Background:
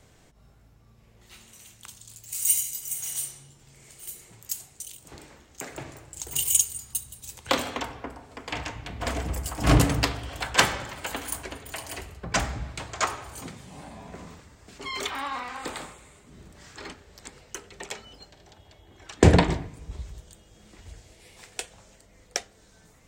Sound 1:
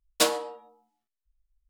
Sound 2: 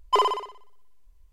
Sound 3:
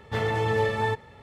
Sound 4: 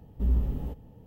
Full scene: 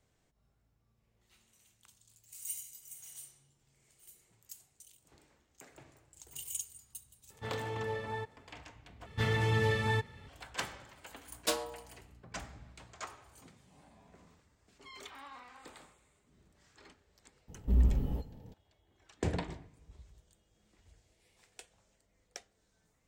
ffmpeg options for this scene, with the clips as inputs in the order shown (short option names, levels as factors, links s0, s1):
-filter_complex "[3:a]asplit=2[s0][s1];[0:a]volume=0.126[s2];[s1]equalizer=f=660:t=o:w=2:g=-10.5[s3];[1:a]aeval=exprs='val(0)+0.00355*(sin(2*PI*60*n/s)+sin(2*PI*2*60*n/s)/2+sin(2*PI*3*60*n/s)/3+sin(2*PI*4*60*n/s)/4+sin(2*PI*5*60*n/s)/5)':c=same[s4];[s2]asplit=2[s5][s6];[s5]atrim=end=9.064[s7];[s3]atrim=end=1.22[s8];[s6]atrim=start=10.276[s9];[s0]atrim=end=1.22,asetpts=PTS-STARTPTS,volume=0.224,afade=t=in:d=0.004:c=hsin,afade=t=out:st=1.216:d=0.004:c=hsin,adelay=321930S[s10];[s4]atrim=end=1.69,asetpts=PTS-STARTPTS,volume=0.335,afade=t=in:d=0.004:c=hsin,afade=t=out:st=1.686:d=0.004:c=hsin,adelay=11270[s11];[4:a]atrim=end=1.06,asetpts=PTS-STARTPTS,volume=0.891,afade=t=in:d=0.004:c=hsin,afade=t=out:st=1.056:d=0.004:c=hsin,adelay=770868S[s12];[s7][s8]acrossfade=d=0.004:c1=hsin:c2=hsin[s13];[s13][s9]acrossfade=d=0.004:c1=hsin:c2=hsin[s14];[s14][s10][s11][s12]amix=inputs=4:normalize=0"